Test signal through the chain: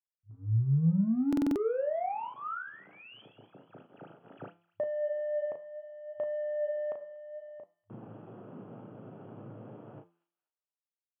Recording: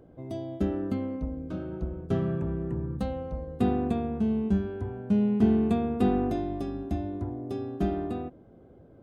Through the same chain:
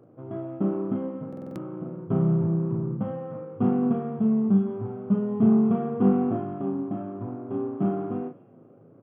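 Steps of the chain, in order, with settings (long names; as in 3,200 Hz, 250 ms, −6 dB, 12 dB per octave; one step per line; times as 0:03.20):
running median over 41 samples
flanger 0.63 Hz, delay 8.6 ms, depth 4.1 ms, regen +78%
dynamic equaliser 140 Hz, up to +5 dB, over −43 dBFS, Q 0.75
in parallel at −8 dB: soft clipping −28.5 dBFS
on the sum: high shelf with overshoot 1,500 Hz −6.5 dB, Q 3
hum removal 170.9 Hz, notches 29
brick-wall band-pass 100–3,400 Hz
double-tracking delay 36 ms −6 dB
delay with a high-pass on its return 240 ms, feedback 33%, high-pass 2,600 Hz, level −15 dB
buffer that repeats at 0:01.28, samples 2,048, times 5
level +2 dB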